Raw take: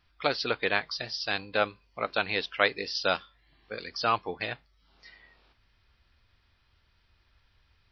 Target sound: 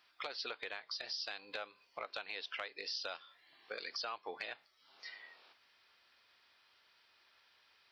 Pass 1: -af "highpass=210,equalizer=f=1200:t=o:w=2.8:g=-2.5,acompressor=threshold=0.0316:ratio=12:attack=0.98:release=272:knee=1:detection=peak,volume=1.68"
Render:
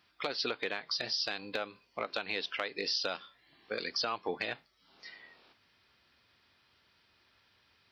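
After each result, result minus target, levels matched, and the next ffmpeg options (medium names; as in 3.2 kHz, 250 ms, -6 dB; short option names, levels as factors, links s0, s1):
250 Hz band +8.0 dB; compression: peak gain reduction -6.5 dB
-af "highpass=550,equalizer=f=1200:t=o:w=2.8:g=-2.5,acompressor=threshold=0.0316:ratio=12:attack=0.98:release=272:knee=1:detection=peak,volume=1.68"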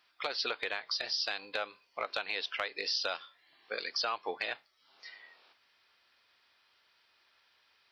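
compression: peak gain reduction -8.5 dB
-af "highpass=550,equalizer=f=1200:t=o:w=2.8:g=-2.5,acompressor=threshold=0.0112:ratio=12:attack=0.98:release=272:knee=1:detection=peak,volume=1.68"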